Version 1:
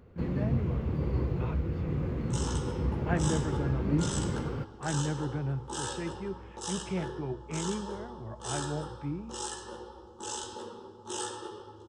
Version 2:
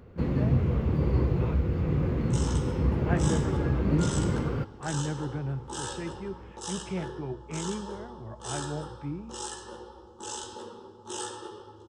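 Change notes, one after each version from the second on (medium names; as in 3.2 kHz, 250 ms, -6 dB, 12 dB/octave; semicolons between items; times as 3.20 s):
first sound +5.0 dB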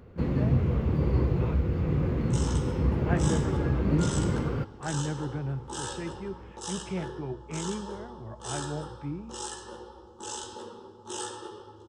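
no change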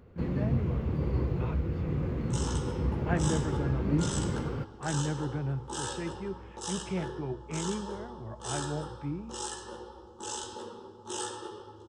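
first sound -4.5 dB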